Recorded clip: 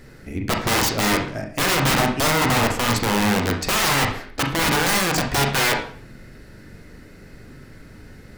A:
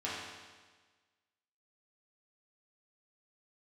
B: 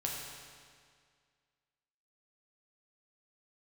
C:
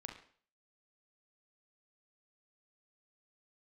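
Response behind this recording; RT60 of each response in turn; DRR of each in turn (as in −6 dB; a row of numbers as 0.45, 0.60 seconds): C; 1.4, 2.0, 0.50 seconds; −8.5, −2.5, 2.0 decibels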